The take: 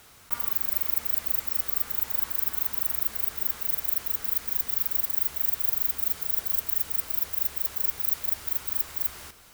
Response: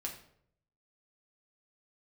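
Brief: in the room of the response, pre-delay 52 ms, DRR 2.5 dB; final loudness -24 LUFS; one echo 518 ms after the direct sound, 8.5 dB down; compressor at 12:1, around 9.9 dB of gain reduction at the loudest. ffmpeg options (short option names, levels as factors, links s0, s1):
-filter_complex "[0:a]acompressor=threshold=0.0316:ratio=12,aecho=1:1:518:0.376,asplit=2[s0][s1];[1:a]atrim=start_sample=2205,adelay=52[s2];[s1][s2]afir=irnorm=-1:irlink=0,volume=0.794[s3];[s0][s3]amix=inputs=2:normalize=0,volume=2.37"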